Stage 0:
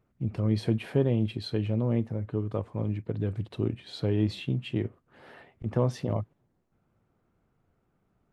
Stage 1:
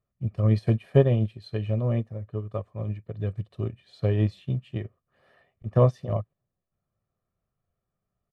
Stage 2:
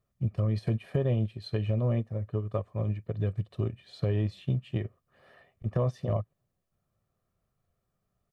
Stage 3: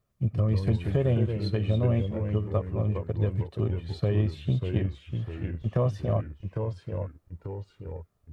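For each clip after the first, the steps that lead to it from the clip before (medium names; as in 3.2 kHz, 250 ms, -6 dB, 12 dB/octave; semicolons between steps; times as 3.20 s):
band-stop 470 Hz, Q 12; comb 1.7 ms, depth 56%; upward expansion 2.5:1, over -34 dBFS; trim +8 dB
peak limiter -16.5 dBFS, peak gain reduction 10 dB; compression 2:1, threshold -31 dBFS, peak gain reduction 6 dB; trim +3.5 dB
ever faster or slower copies 98 ms, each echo -2 st, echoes 3, each echo -6 dB; trim +2.5 dB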